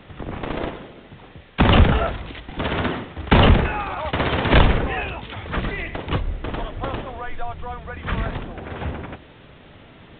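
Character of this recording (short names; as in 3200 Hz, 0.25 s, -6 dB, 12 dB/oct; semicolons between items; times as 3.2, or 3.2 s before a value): a quantiser's noise floor 8-bit, dither triangular; µ-law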